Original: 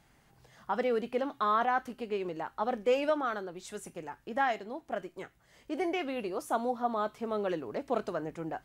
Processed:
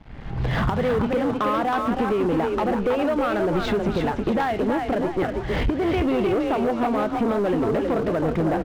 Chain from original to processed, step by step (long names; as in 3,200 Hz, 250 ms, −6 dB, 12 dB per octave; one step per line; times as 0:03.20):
camcorder AGC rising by 39 dB per second
low-pass filter 3,600 Hz 24 dB per octave
low-shelf EQ 69 Hz +11 dB
downward compressor 6 to 1, threshold −32 dBFS, peak gain reduction 12.5 dB
low-shelf EQ 450 Hz +8.5 dB
echo with shifted repeats 320 ms, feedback 36%, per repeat +33 Hz, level −5 dB
leveller curve on the samples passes 3